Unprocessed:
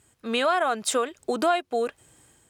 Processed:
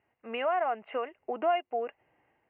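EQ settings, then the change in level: rippled Chebyshev low-pass 2.9 kHz, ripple 9 dB; bass shelf 160 Hz -10 dB; -2.0 dB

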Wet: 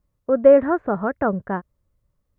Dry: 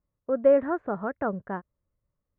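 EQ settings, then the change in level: bass shelf 100 Hz +6 dB; +7.0 dB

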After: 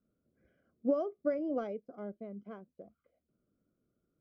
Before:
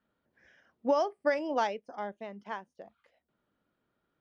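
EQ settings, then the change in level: boxcar filter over 49 samples; +3.0 dB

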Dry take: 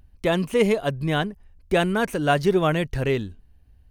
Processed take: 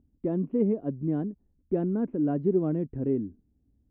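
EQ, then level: band-pass filter 280 Hz, Q 2.9; distance through air 360 m; tilt EQ -2 dB/octave; 0.0 dB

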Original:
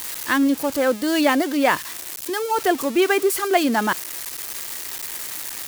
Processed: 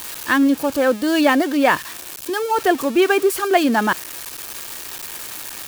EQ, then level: band-stop 2 kHz, Q 9.3; dynamic bell 1.9 kHz, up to +4 dB, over -42 dBFS, Q 5.9; tone controls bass +1 dB, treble -4 dB; +2.5 dB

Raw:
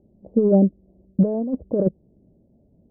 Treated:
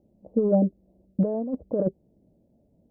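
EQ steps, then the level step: bass shelf 350 Hz -7.5 dB; band-stop 390 Hz, Q 12; 0.0 dB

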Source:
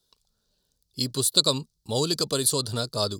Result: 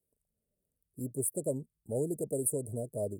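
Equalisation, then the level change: high-pass 41 Hz; Chebyshev band-stop 660–8600 Hz, order 4; dynamic bell 480 Hz, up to +3 dB, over -37 dBFS, Q 1.4; -7.0 dB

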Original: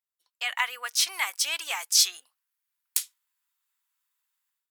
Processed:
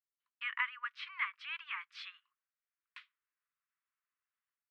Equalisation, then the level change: elliptic high-pass 1.1 kHz, stop band 40 dB; Chebyshev low-pass 2.3 kHz, order 2; distance through air 480 m; -1.0 dB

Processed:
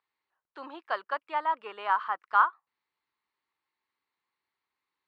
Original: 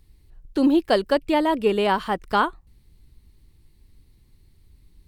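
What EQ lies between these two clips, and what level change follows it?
dynamic bell 1.3 kHz, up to +7 dB, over -36 dBFS, Q 1.9; ladder band-pass 1.3 kHz, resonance 40%; +2.5 dB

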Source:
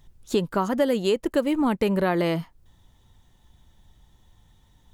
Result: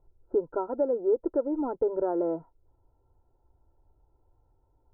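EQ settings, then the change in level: rippled Chebyshev low-pass 1.4 kHz, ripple 6 dB; tilt shelf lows -8.5 dB, about 1.1 kHz; static phaser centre 480 Hz, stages 4; +6.0 dB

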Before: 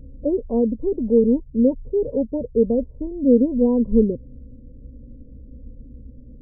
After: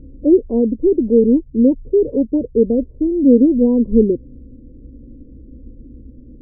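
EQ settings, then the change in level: distance through air 430 m; peaking EQ 340 Hz +14.5 dB 0.65 oct; bass shelf 460 Hz +4 dB; -3.0 dB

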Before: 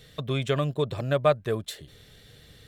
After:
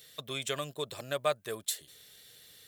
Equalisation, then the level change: RIAA curve recording; dynamic bell 7.8 kHz, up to +4 dB, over -45 dBFS, Q 1.1; -7.0 dB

